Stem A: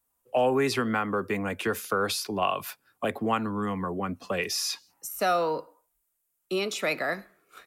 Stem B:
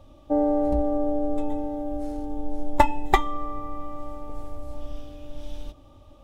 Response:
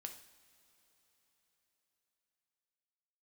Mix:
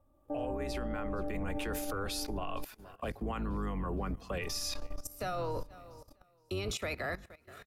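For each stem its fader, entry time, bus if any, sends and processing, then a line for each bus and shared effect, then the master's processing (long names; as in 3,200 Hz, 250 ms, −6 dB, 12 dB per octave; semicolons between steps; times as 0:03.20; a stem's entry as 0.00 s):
−0.5 dB, 0.00 s, send −18.5 dB, echo send −23.5 dB, sub-octave generator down 2 octaves, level +3 dB; brickwall limiter −18.5 dBFS, peak gain reduction 6.5 dB
−6.0 dB, 0.00 s, muted 0:02.65–0:04.41, send −6.5 dB, no echo send, high shelf with overshoot 2,200 Hz −10.5 dB, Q 1.5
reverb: on, pre-delay 3 ms
echo: repeating echo 469 ms, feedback 51%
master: output level in coarse steps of 17 dB; brickwall limiter −27 dBFS, peak gain reduction 5.5 dB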